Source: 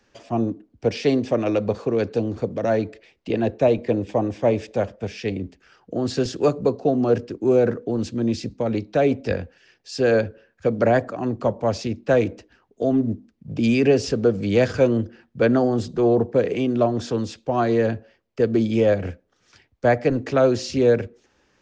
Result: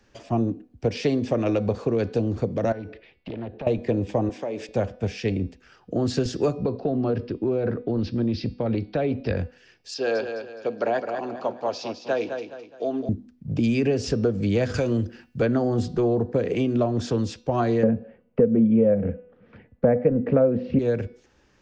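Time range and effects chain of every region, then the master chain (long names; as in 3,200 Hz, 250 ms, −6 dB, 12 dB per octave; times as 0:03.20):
0:02.72–0:03.67: low-pass filter 3,900 Hz 24 dB per octave + downward compressor 5 to 1, threshold −33 dBFS + highs frequency-modulated by the lows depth 0.34 ms
0:04.29–0:04.69: high-pass filter 280 Hz + downward compressor 5 to 1, threshold −27 dBFS
0:06.57–0:09.37: Butterworth low-pass 5,100 Hz 48 dB per octave + downward compressor 2.5 to 1, threshold −22 dBFS
0:09.94–0:13.09: loudspeaker in its box 500–5,600 Hz, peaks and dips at 540 Hz −5 dB, 1,200 Hz −4 dB, 2,000 Hz −9 dB + notch filter 1,500 Hz, Q 28 + repeating echo 209 ms, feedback 37%, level −8.5 dB
0:14.74–0:15.42: high-shelf EQ 2,900 Hz +9.5 dB + downward compressor 3 to 1, threshold −19 dBFS
0:17.83–0:20.79: low-pass filter 2,500 Hz 24 dB per octave + hollow resonant body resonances 210/480 Hz, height 17 dB, ringing for 35 ms
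whole clip: low-shelf EQ 170 Hz +7.5 dB; hum removal 247.6 Hz, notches 24; downward compressor 4 to 1, threshold −19 dBFS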